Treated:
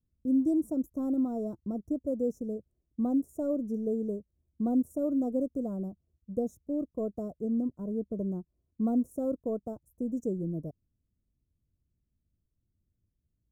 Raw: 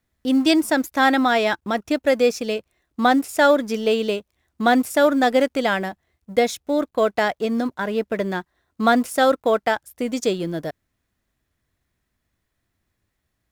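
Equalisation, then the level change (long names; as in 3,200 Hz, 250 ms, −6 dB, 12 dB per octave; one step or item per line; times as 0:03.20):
elliptic band-stop filter 840–5,900 Hz, stop band 50 dB
bass and treble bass +7 dB, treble −12 dB
phaser with its sweep stopped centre 2,000 Hz, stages 4
−8.5 dB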